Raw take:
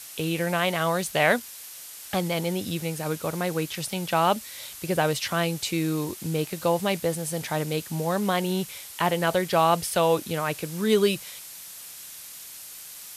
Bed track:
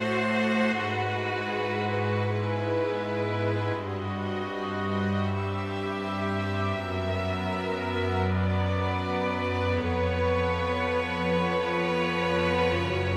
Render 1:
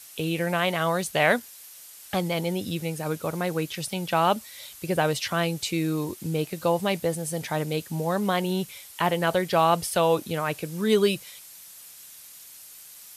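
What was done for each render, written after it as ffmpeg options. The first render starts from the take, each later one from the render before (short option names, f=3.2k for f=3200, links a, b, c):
-af "afftdn=nr=6:nf=-42"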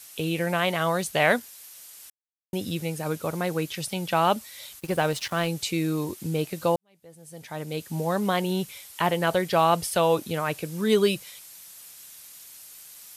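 -filter_complex "[0:a]asplit=3[a][b][c];[a]afade=t=out:st=4.79:d=0.02[d];[b]aeval=exprs='sgn(val(0))*max(abs(val(0))-0.00944,0)':c=same,afade=t=in:st=4.79:d=0.02,afade=t=out:st=5.47:d=0.02[e];[c]afade=t=in:st=5.47:d=0.02[f];[d][e][f]amix=inputs=3:normalize=0,asplit=4[g][h][i][j];[g]atrim=end=2.1,asetpts=PTS-STARTPTS,afade=t=out:st=2.096:d=0.004:c=hsin[k];[h]atrim=start=2.1:end=2.53,asetpts=PTS-STARTPTS,volume=0[l];[i]atrim=start=2.53:end=6.76,asetpts=PTS-STARTPTS,afade=t=in:d=0.004:c=hsin,afade=t=out:st=4.226:d=0.004:c=hsin[m];[j]atrim=start=6.76,asetpts=PTS-STARTPTS,afade=t=in:d=1.22:c=qua[n];[k][l][m][n]concat=n=4:v=0:a=1"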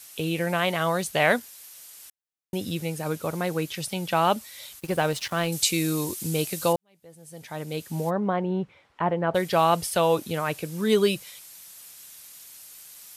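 -filter_complex "[0:a]asettb=1/sr,asplit=3[a][b][c];[a]atrim=end=5.524[d];[b]atrim=start=5.52:end=6.73,asetpts=PTS-STARTPTS,afade=t=in:d=0.004:c=qsin,afade=t=out:st=1.206:d=0.004:c=qsin,equalizer=f=9.6k:w=0.33:g=11[e];[c]atrim=start=6.726[f];[d][e]acrossfade=d=0.004:c1=hsin:c2=qsin[g];[g][f]acrossfade=d=0.004:c1=qsin:c2=hsin,asplit=3[h][i][j];[h]afade=t=out:st=8.09:d=0.02[k];[i]lowpass=1.3k,afade=t=in:st=8.09:d=0.02,afade=t=out:st=9.34:d=0.02[l];[j]afade=t=in:st=9.34:d=0.02[m];[k][l][m]amix=inputs=3:normalize=0"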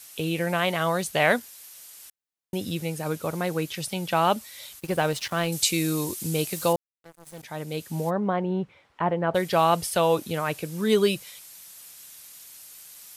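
-filter_complex "[0:a]asettb=1/sr,asplit=3[a][b][c];[a]atrim=end=6.514[d];[b]atrim=start=6.51:end=7.43,asetpts=PTS-STARTPTS,afade=t=in:d=0.004:c=qsin,afade=t=out:st=0.916:d=0.004:c=qsin,acrusher=bits=6:mix=0:aa=0.5[e];[c]atrim=start=7.426[f];[d][e]acrossfade=d=0.004:c1=hsin:c2=qsin[g];[g][f]acrossfade=d=0.004:c1=qsin:c2=hsin"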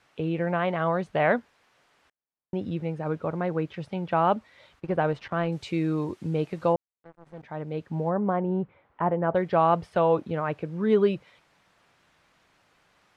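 -af "lowpass=1.5k"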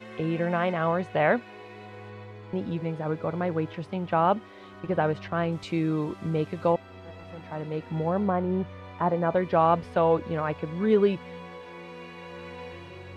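-filter_complex "[1:a]volume=-16dB[a];[0:a][a]amix=inputs=2:normalize=0"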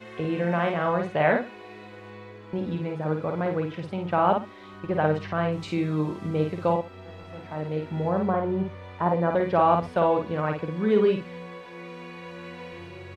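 -af "aecho=1:1:52|123:0.596|0.1"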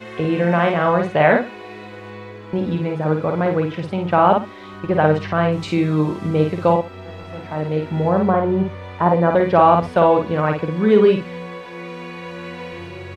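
-af "volume=8dB,alimiter=limit=-2dB:level=0:latency=1"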